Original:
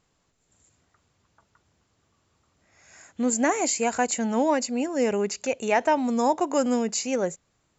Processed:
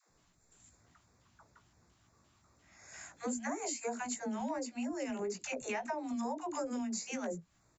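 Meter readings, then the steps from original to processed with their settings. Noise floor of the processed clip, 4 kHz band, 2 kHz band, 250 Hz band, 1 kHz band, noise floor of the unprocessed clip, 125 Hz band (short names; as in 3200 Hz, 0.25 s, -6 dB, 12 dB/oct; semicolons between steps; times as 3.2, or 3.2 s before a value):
-72 dBFS, -13.0 dB, -12.5 dB, -12.5 dB, -15.0 dB, -71 dBFS, n/a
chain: LFO notch square 2.9 Hz 470–3000 Hz; doubler 17 ms -7.5 dB; dispersion lows, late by 0.105 s, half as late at 400 Hz; compressor 6:1, threshold -36 dBFS, peak gain reduction 18.5 dB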